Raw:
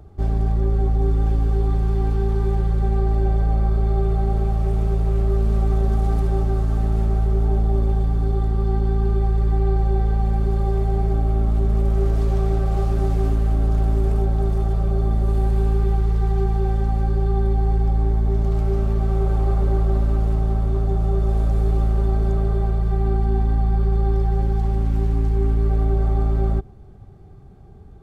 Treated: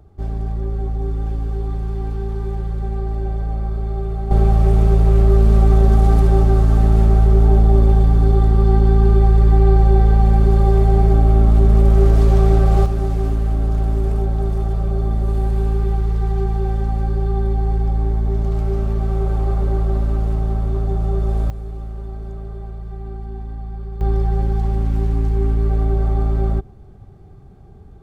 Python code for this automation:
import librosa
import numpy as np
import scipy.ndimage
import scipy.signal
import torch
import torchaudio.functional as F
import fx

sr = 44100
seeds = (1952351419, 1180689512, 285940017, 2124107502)

y = fx.gain(x, sr, db=fx.steps((0.0, -3.5), (4.31, 7.0), (12.86, 0.5), (21.5, -10.5), (24.01, 1.5)))